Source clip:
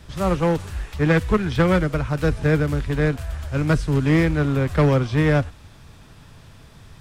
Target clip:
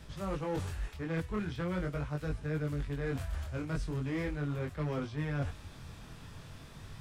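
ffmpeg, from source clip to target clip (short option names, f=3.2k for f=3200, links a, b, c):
-af "flanger=delay=19.5:depth=4.7:speed=0.41,areverse,acompressor=threshold=-33dB:ratio=6,areverse"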